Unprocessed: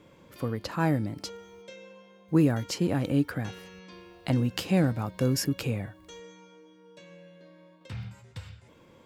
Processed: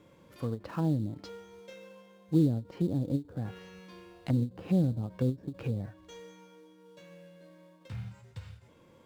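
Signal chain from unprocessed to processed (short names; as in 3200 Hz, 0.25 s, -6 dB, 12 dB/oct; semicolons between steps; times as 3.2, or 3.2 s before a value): harmonic-percussive split harmonic +5 dB; modulation noise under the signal 22 dB; treble ducked by the level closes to 460 Hz, closed at -20 dBFS; in parallel at -11 dB: sample-rate reducer 4100 Hz, jitter 20%; on the sum: ending taper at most 280 dB/s; gain -8.5 dB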